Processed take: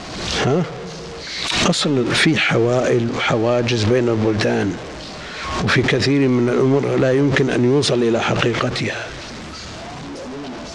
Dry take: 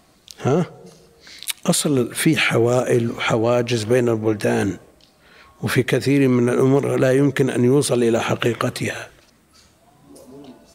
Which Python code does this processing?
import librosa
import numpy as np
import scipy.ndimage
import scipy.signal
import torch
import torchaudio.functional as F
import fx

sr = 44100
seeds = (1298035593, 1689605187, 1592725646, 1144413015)

y = x + 0.5 * 10.0 ** (-24.5 / 20.0) * np.sign(x)
y = scipy.signal.sosfilt(scipy.signal.butter(4, 6200.0, 'lowpass', fs=sr, output='sos'), y)
y = fx.pre_swell(y, sr, db_per_s=40.0)
y = F.gain(torch.from_numpy(y), -1.0).numpy()